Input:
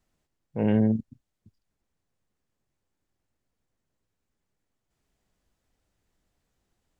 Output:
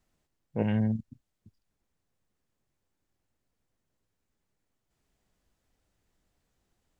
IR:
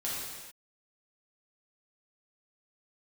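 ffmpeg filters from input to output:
-filter_complex "[0:a]asettb=1/sr,asplit=3[a][b][c];[a]atrim=end=0.624[d];[b]atrim=start=0.62:end=1.05,asetpts=PTS-STARTPTS,afade=t=in:d=0.004:c=qsin,afade=t=out:st=0.426:d=0.004:c=qsin,equalizer=f=380:t=o:w=1.4:g=-13.5[e];[c]atrim=start=1.046[f];[d][e]acrossfade=d=0.004:c1=hsin:c2=qsin[g];[g][f]acrossfade=d=0.004:c1=qsin:c2=hsin"

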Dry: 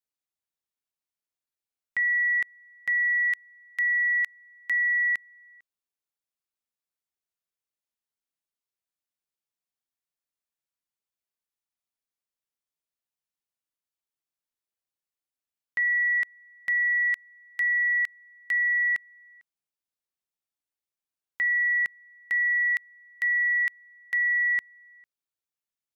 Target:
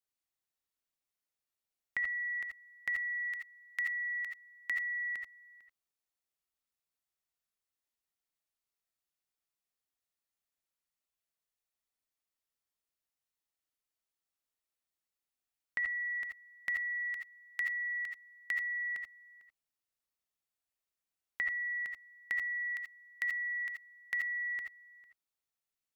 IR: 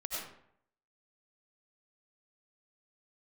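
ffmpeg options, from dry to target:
-filter_complex "[0:a]acompressor=threshold=-31dB:ratio=6[a];[1:a]atrim=start_sample=2205,atrim=end_sample=3969[b];[a][b]afir=irnorm=-1:irlink=0,volume=2dB"

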